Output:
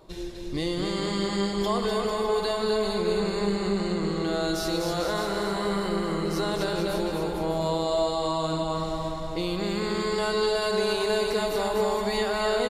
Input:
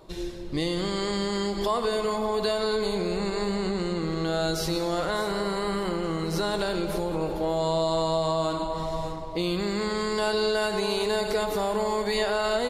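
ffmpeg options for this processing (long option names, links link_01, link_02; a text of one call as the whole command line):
ffmpeg -i in.wav -af "aecho=1:1:250|450|610|738|840.4:0.631|0.398|0.251|0.158|0.1,volume=-2dB" out.wav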